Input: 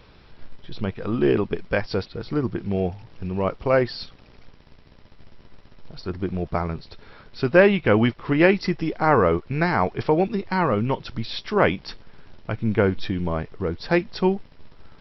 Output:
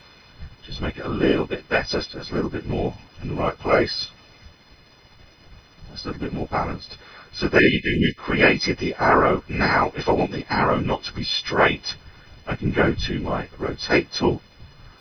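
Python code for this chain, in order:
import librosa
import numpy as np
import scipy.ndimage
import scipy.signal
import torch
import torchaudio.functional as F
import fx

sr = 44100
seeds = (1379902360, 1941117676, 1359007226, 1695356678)

y = fx.freq_snap(x, sr, grid_st=3)
y = fx.spec_erase(y, sr, start_s=7.59, length_s=0.59, low_hz=420.0, high_hz=1700.0)
y = fx.whisperise(y, sr, seeds[0])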